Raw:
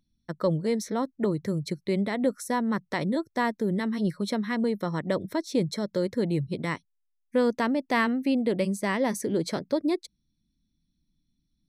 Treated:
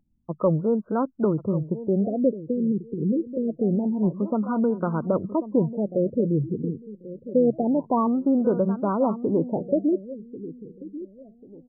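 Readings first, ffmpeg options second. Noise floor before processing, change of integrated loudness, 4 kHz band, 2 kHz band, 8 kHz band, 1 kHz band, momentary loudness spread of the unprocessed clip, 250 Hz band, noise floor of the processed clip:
-76 dBFS, +3.5 dB, under -40 dB, under -15 dB, under -35 dB, +1.0 dB, 5 LU, +4.0 dB, -56 dBFS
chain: -filter_complex "[0:a]asplit=2[s0][s1];[s1]adelay=1091,lowpass=f=2000:p=1,volume=0.211,asplit=2[s2][s3];[s3]adelay=1091,lowpass=f=2000:p=1,volume=0.31,asplit=2[s4][s5];[s5]adelay=1091,lowpass=f=2000:p=1,volume=0.31[s6];[s0][s2][s4][s6]amix=inputs=4:normalize=0,afftfilt=real='re*lt(b*sr/1024,500*pow(1600/500,0.5+0.5*sin(2*PI*0.26*pts/sr)))':imag='im*lt(b*sr/1024,500*pow(1600/500,0.5+0.5*sin(2*PI*0.26*pts/sr)))':win_size=1024:overlap=0.75,volume=1.58"

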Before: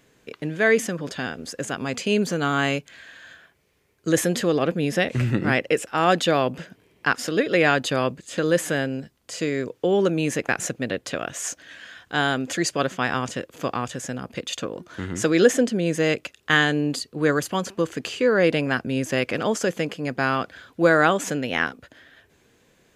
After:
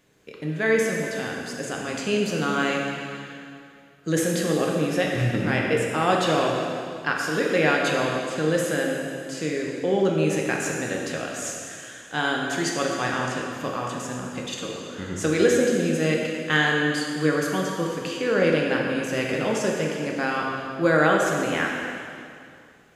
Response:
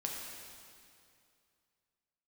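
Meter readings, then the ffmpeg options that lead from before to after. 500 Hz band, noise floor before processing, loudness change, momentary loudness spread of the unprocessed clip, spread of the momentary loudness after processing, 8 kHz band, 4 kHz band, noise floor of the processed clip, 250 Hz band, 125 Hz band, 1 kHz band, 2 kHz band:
-0.5 dB, -62 dBFS, -1.0 dB, 12 LU, 11 LU, -1.0 dB, -1.0 dB, -47 dBFS, -0.5 dB, -0.5 dB, -1.0 dB, -1.0 dB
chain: -filter_complex "[1:a]atrim=start_sample=2205[s0];[0:a][s0]afir=irnorm=-1:irlink=0,volume=0.75"

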